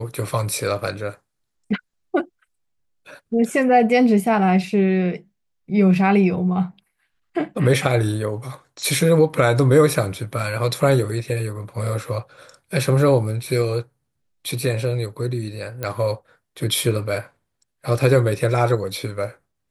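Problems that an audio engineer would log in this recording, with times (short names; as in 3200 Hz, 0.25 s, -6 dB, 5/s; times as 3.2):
15.83 pop -12 dBFS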